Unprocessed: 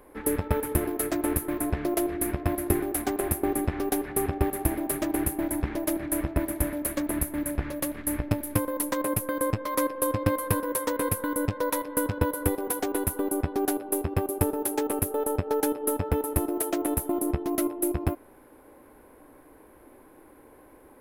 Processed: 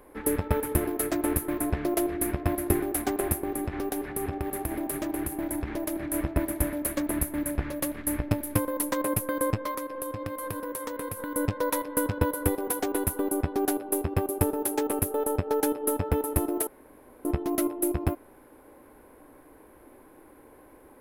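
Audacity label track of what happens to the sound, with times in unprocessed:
3.340000	6.140000	compression, threshold -26 dBFS
9.710000	11.350000	compression, threshold -30 dBFS
16.670000	17.250000	room tone

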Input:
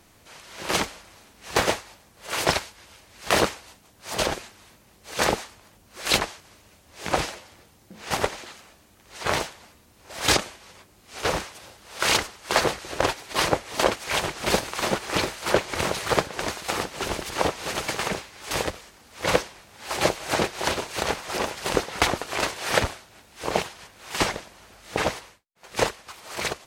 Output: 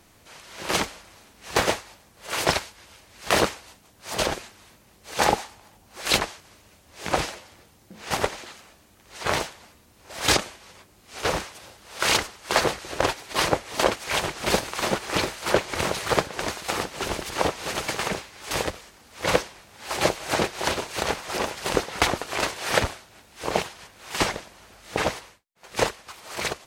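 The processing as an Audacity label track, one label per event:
5.160000	6.010000	peaking EQ 820 Hz +7.5 dB 0.34 oct

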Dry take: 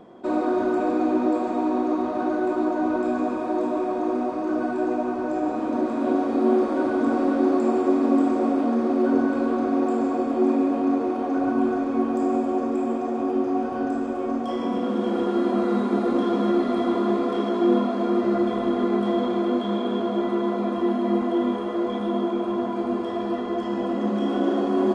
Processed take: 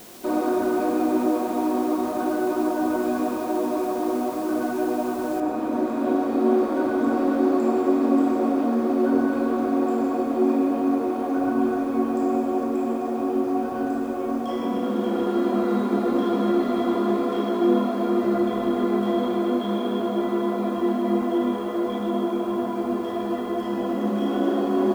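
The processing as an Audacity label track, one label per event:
5.400000	5.400000	noise floor step -46 dB -57 dB

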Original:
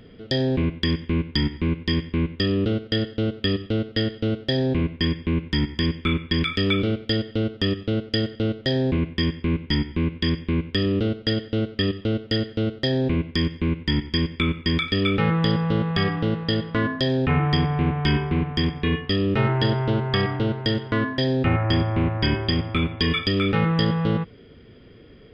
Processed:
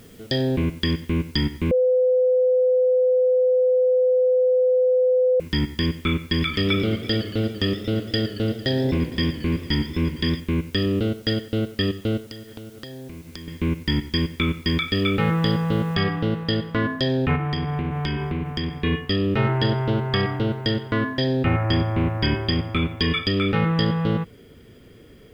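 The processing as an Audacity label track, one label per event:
1.710000	5.400000	bleep 507 Hz -15 dBFS
6.190000	10.400000	modulated delay 114 ms, feedback 74%, depth 128 cents, level -14 dB
12.200000	13.480000	compression 8:1, threshold -34 dBFS
15.950000	15.950000	noise floor step -55 dB -67 dB
17.350000	18.740000	compression 5:1, threshold -21 dBFS

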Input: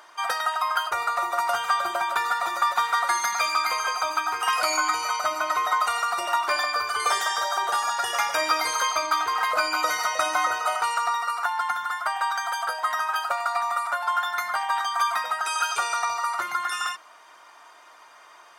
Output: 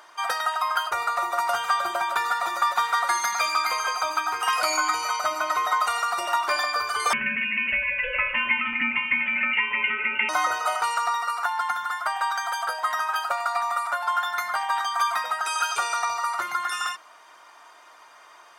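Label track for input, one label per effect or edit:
7.130000	10.290000	frequency inversion carrier 3.4 kHz

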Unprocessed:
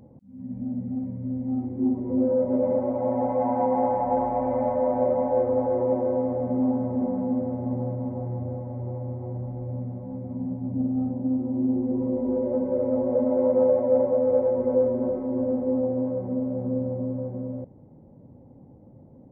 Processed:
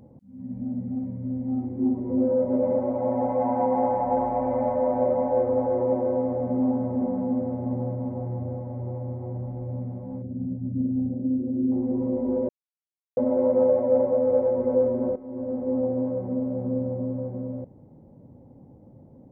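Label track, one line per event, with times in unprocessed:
10.220000	11.720000	resonances exaggerated exponent 2
12.490000	13.170000	mute
15.160000	15.830000	fade in, from -14 dB

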